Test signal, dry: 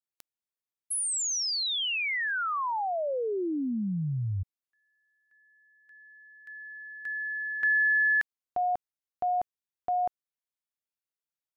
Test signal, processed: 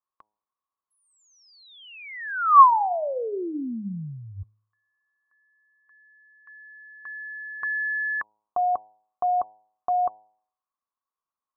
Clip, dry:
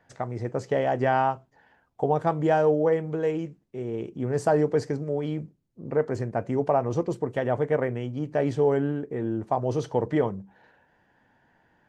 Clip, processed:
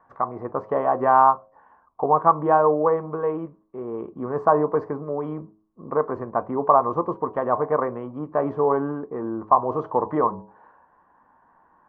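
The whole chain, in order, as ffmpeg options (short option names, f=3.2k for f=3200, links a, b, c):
-af "lowpass=f=1.1k:t=q:w=13,equalizer=f=120:t=o:w=0.6:g=-9.5,bandreject=f=106.5:t=h:w=4,bandreject=f=213:t=h:w=4,bandreject=f=319.5:t=h:w=4,bandreject=f=426:t=h:w=4,bandreject=f=532.5:t=h:w=4,bandreject=f=639:t=h:w=4,bandreject=f=745.5:t=h:w=4,bandreject=f=852:t=h:w=4,bandreject=f=958.5:t=h:w=4"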